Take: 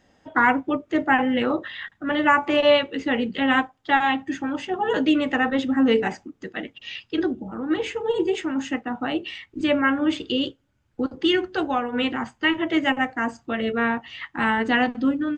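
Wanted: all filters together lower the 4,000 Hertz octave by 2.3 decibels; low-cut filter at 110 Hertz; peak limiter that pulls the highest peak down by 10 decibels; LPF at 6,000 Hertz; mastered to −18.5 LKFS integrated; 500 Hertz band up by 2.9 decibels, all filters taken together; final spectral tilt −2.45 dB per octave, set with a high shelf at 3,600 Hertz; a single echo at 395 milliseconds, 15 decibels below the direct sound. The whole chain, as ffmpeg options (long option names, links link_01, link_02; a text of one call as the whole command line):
ffmpeg -i in.wav -af "highpass=110,lowpass=6000,equalizer=frequency=500:width_type=o:gain=3.5,highshelf=frequency=3600:gain=3,equalizer=frequency=4000:width_type=o:gain=-5.5,alimiter=limit=-15dB:level=0:latency=1,aecho=1:1:395:0.178,volume=7dB" out.wav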